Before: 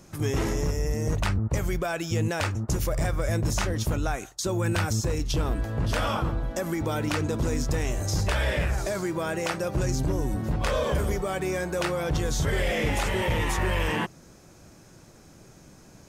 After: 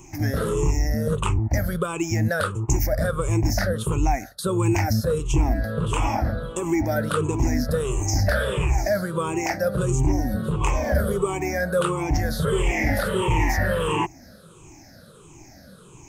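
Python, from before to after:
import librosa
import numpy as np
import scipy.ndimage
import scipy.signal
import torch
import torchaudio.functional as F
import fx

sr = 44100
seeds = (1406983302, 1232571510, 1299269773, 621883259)

y = fx.spec_ripple(x, sr, per_octave=0.69, drift_hz=-1.5, depth_db=21)
y = fx.dynamic_eq(y, sr, hz=3700.0, q=1.3, threshold_db=-45.0, ratio=4.0, max_db=-8)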